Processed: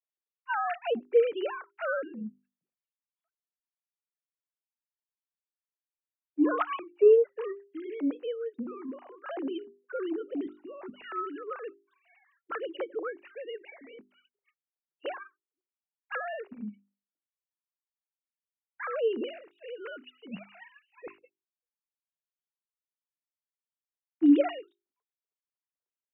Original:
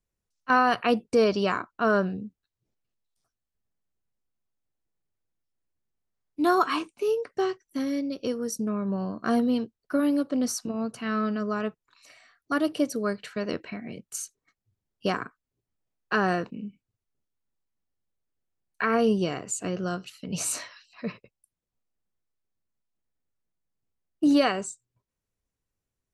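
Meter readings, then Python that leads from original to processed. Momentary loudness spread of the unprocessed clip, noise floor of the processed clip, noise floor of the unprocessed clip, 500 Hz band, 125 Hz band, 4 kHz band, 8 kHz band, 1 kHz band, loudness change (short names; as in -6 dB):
15 LU, under -85 dBFS, under -85 dBFS, -1.0 dB, under -20 dB, -11.5 dB, under -40 dB, -8.5 dB, -3.5 dB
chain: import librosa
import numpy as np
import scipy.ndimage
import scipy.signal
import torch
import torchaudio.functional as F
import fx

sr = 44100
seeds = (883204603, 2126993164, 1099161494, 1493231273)

y = fx.sine_speech(x, sr)
y = fx.hum_notches(y, sr, base_hz=50, count=8)
y = y * 10.0 ** (-3.5 / 20.0)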